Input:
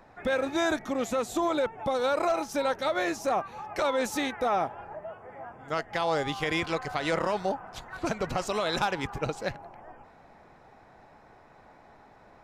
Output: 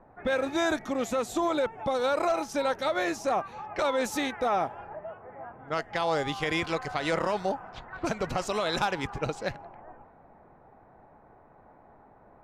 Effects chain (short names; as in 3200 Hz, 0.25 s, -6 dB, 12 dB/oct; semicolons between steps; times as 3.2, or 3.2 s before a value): low-pass opened by the level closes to 1000 Hz, open at -27.5 dBFS